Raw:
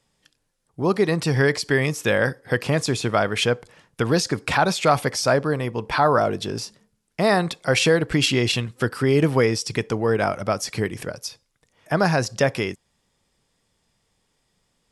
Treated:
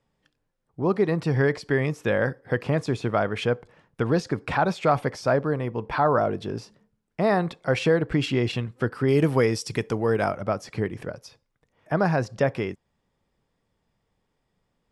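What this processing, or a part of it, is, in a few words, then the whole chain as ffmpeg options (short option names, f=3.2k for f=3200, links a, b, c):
through cloth: -filter_complex "[0:a]asettb=1/sr,asplit=3[a][b][c];[a]atrim=end=9.084[d];[b]atrim=start=9.08:end=10.32,asetpts=PTS-STARTPTS,afade=t=in:d=0.004:c=qsin,afade=t=out:st=1.236:d=0.004:c=qsin,aemphasis=mode=production:type=75kf[e];[c]atrim=start=10.316[f];[d][e]acrossfade=d=0.004:c1=hsin:c2=qsin[g];[g][f]acrossfade=d=0.004:c1=qsin:c2=hsin,highshelf=f=3.4k:g=-17.5,volume=-2dB"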